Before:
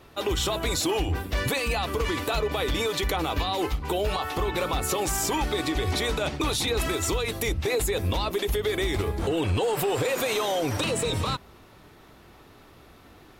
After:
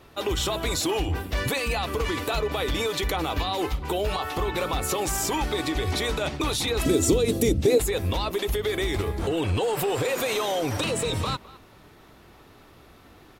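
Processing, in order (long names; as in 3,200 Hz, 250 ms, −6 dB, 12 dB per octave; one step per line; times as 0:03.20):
0:06.85–0:07.78: octave-band graphic EQ 125/250/500/1,000/2,000/8,000 Hz +5/+12/+6/−8/−5/+5 dB
far-end echo of a speakerphone 210 ms, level −19 dB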